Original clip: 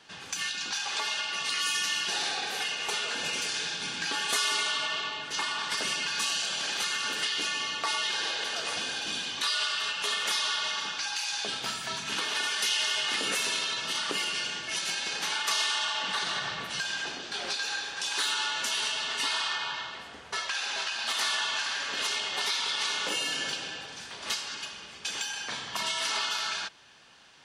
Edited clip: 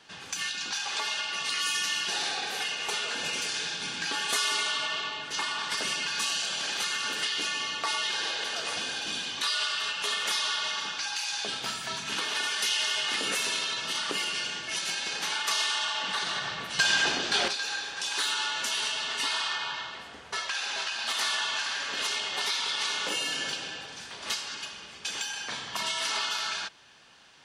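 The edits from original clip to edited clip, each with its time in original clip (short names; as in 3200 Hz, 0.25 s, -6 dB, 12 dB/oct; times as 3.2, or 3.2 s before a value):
16.79–17.48 gain +9 dB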